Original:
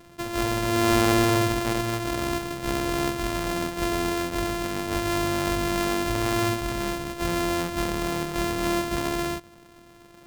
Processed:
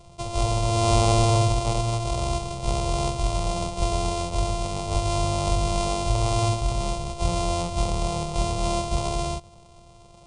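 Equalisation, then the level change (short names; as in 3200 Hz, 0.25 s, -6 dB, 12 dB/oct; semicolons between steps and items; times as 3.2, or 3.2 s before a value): brick-wall FIR low-pass 10000 Hz; low shelf 200 Hz +7.5 dB; fixed phaser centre 690 Hz, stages 4; +3.0 dB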